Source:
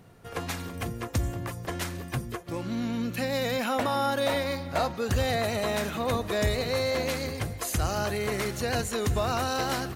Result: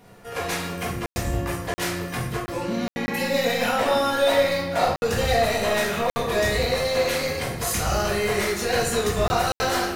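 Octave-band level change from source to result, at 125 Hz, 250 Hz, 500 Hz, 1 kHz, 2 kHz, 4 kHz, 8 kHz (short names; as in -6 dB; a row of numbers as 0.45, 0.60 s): +1.5, +3.0, +6.5, +6.0, +7.5, +6.0, +6.5 dB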